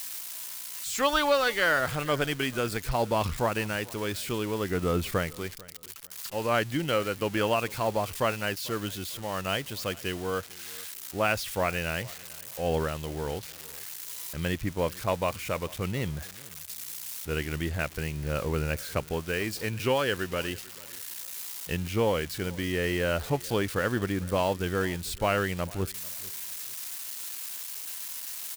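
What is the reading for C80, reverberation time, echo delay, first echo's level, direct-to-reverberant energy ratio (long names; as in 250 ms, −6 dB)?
no reverb audible, no reverb audible, 445 ms, −22.0 dB, no reverb audible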